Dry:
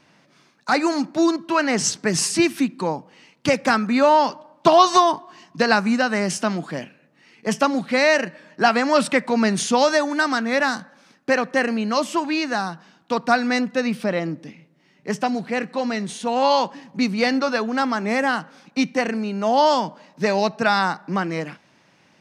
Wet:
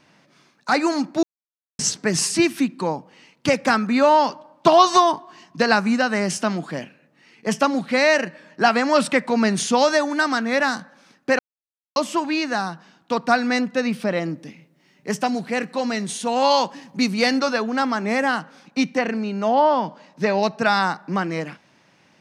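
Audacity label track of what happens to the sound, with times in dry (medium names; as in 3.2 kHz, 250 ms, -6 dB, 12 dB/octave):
1.230000	1.790000	mute
11.390000	11.960000	mute
14.140000	17.510000	treble shelf 9.1 kHz -> 4.9 kHz +9.5 dB
18.950000	20.430000	low-pass that closes with the level closes to 1.9 kHz, closed at -12.5 dBFS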